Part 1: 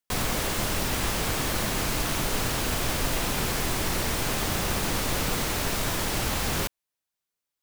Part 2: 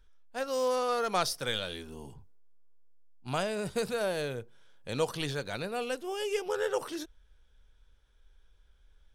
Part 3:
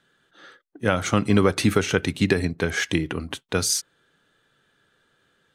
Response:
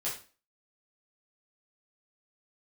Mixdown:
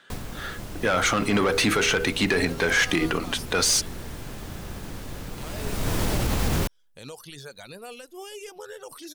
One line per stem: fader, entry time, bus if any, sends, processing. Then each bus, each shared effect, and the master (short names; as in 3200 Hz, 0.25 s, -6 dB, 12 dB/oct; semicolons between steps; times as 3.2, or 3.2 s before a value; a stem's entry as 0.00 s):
-1.5 dB, 0.00 s, no send, low shelf 480 Hz +10 dB; auto duck -14 dB, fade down 0.20 s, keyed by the third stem
-3.5 dB, 2.10 s, no send, high shelf 4900 Hz +11.5 dB; reverb removal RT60 0.9 s; limiter -27 dBFS, peak gain reduction 14 dB
-1.5 dB, 0.00 s, no send, de-hum 80.96 Hz, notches 6; overdrive pedal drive 20 dB, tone 4800 Hz, clips at -5 dBFS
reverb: off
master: limiter -14 dBFS, peak gain reduction 7.5 dB